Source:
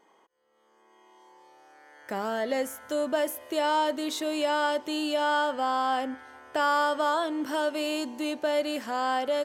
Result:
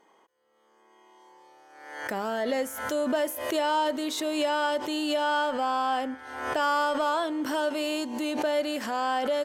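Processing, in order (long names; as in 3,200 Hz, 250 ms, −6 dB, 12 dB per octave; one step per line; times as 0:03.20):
harmonic generator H 5 −28 dB, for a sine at −13.5 dBFS
background raised ahead of every attack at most 56 dB per second
level −1 dB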